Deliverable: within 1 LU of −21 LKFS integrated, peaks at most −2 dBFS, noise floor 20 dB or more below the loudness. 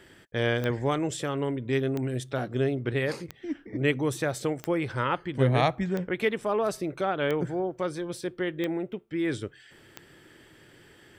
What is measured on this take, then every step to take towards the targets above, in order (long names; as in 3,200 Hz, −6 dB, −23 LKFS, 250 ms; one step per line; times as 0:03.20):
number of clicks 8; integrated loudness −29.0 LKFS; sample peak −10.5 dBFS; target loudness −21.0 LKFS
→ click removal
level +8 dB